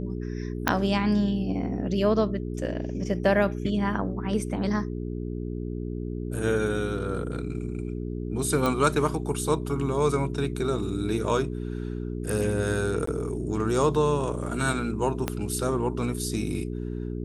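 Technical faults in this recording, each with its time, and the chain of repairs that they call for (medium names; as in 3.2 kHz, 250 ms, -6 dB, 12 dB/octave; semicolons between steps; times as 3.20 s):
hum 60 Hz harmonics 7 -32 dBFS
0.68 s: pop -6 dBFS
8.66 s: pop
13.06–13.07 s: dropout 14 ms
15.28 s: pop -11 dBFS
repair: de-click; de-hum 60 Hz, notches 7; interpolate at 13.06 s, 14 ms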